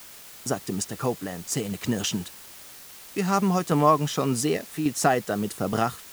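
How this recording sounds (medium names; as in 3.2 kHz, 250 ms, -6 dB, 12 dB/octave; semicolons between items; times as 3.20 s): random-step tremolo; a quantiser's noise floor 8-bit, dither triangular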